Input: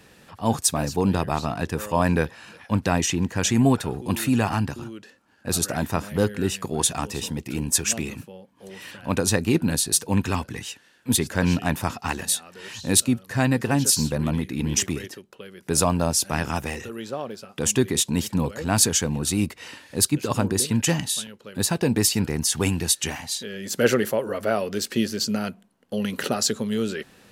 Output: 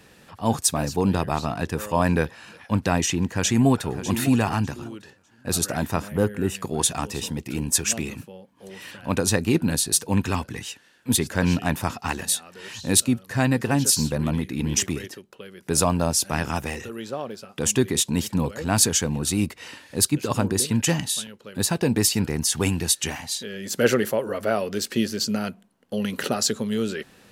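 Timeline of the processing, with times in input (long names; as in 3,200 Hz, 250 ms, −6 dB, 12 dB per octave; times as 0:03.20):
0:03.26–0:03.93: delay throw 600 ms, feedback 20%, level −12 dB
0:06.08–0:06.55: parametric band 4,500 Hz −11.5 dB 1.1 octaves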